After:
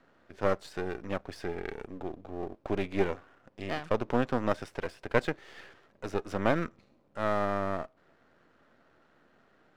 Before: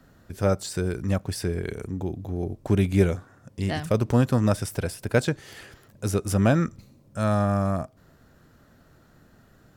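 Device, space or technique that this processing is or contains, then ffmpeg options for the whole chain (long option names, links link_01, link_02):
crystal radio: -af "highpass=330,lowpass=2900,equalizer=frequency=74:width_type=o:width=0.51:gain=12.5,aeval=exprs='if(lt(val(0),0),0.251*val(0),val(0))':channel_layout=same"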